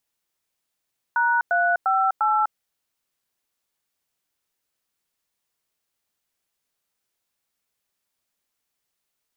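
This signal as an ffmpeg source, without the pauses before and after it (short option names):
-f lavfi -i "aevalsrc='0.1*clip(min(mod(t,0.349),0.25-mod(t,0.349))/0.002,0,1)*(eq(floor(t/0.349),0)*(sin(2*PI*941*mod(t,0.349))+sin(2*PI*1477*mod(t,0.349)))+eq(floor(t/0.349),1)*(sin(2*PI*697*mod(t,0.349))+sin(2*PI*1477*mod(t,0.349)))+eq(floor(t/0.349),2)*(sin(2*PI*770*mod(t,0.349))+sin(2*PI*1336*mod(t,0.349)))+eq(floor(t/0.349),3)*(sin(2*PI*852*mod(t,0.349))+sin(2*PI*1336*mod(t,0.349))))':d=1.396:s=44100"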